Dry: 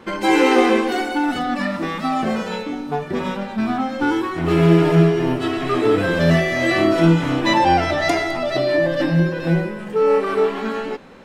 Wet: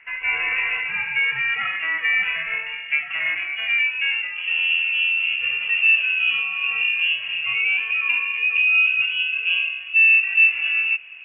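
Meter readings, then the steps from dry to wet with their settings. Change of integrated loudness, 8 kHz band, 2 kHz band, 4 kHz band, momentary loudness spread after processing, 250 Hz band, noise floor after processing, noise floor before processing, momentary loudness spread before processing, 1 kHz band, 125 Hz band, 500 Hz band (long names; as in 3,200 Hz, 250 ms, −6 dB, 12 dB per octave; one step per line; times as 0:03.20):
0.0 dB, below −40 dB, +8.0 dB, +4.5 dB, 8 LU, below −40 dB, −34 dBFS, −31 dBFS, 10 LU, −17.5 dB, below −30 dB, below −30 dB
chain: speech leveller within 5 dB 0.5 s
band-pass filter sweep 1,000 Hz → 500 Hz, 0:03.26–0:04.65
voice inversion scrambler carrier 3,100 Hz
level +3.5 dB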